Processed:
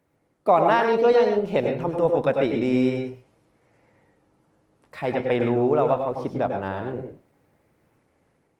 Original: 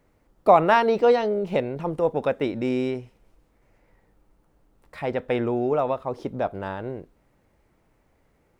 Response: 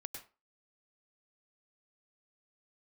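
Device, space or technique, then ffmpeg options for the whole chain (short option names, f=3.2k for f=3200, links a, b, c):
far-field microphone of a smart speaker: -filter_complex "[1:a]atrim=start_sample=2205[a];[0:a][a]afir=irnorm=-1:irlink=0,highpass=f=81:w=0.5412,highpass=f=81:w=1.3066,dynaudnorm=f=690:g=3:m=4.5dB,volume=1.5dB" -ar 48000 -c:a libopus -b:a 24k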